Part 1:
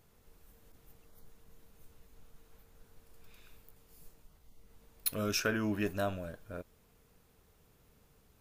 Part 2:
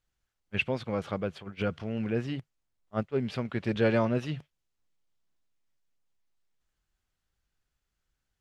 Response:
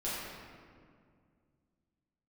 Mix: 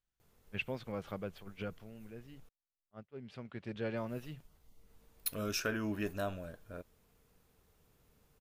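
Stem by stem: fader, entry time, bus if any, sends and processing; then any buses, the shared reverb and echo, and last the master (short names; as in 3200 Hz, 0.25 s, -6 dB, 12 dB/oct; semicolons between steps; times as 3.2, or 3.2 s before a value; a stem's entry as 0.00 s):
-3.5 dB, 0.20 s, muted 2.49–3.97, no send, dry
1.58 s -9 dB -> 2 s -20.5 dB -> 3.07 s -20.5 dB -> 3.48 s -13 dB, 0.00 s, no send, dry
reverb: off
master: dry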